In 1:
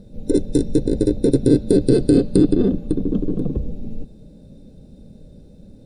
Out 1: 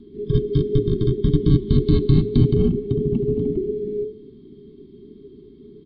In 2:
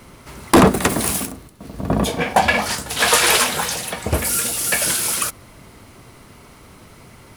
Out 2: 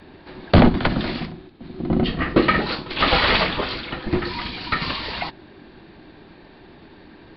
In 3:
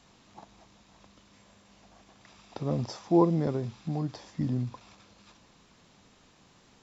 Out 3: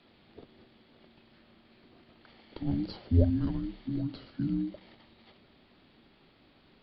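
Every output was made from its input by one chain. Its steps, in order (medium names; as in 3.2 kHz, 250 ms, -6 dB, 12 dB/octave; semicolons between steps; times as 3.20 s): de-hum 79.36 Hz, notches 7; resampled via 11.025 kHz; frequency shift -430 Hz; trim -1 dB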